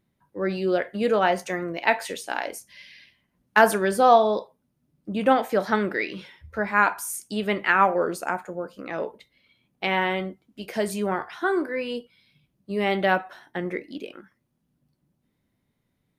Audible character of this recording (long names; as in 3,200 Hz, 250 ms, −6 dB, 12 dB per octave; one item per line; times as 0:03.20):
background noise floor −74 dBFS
spectral slope −4.5 dB per octave